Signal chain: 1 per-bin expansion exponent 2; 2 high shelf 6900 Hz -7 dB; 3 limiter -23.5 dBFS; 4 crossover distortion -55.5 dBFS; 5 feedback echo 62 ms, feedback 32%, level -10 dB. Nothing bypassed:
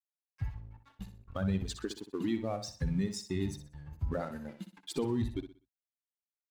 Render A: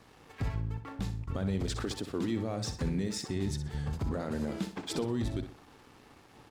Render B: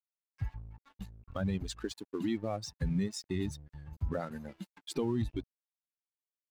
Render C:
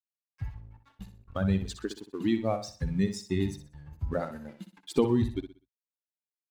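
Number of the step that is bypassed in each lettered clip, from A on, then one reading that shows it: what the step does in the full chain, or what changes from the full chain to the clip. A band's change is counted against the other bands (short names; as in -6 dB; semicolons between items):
1, momentary loudness spread change -11 LU; 5, crest factor change -2.5 dB; 3, crest factor change +3.0 dB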